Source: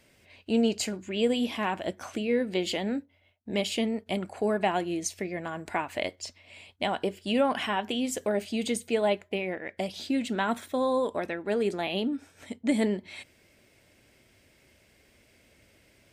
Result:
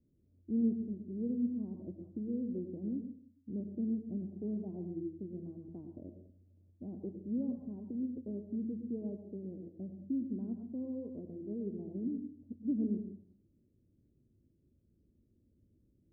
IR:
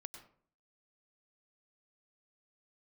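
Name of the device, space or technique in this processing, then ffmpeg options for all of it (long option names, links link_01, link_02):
next room: -filter_complex "[0:a]lowpass=frequency=320:width=0.5412,lowpass=frequency=320:width=1.3066[link_01];[1:a]atrim=start_sample=2205[link_02];[link_01][link_02]afir=irnorm=-1:irlink=0"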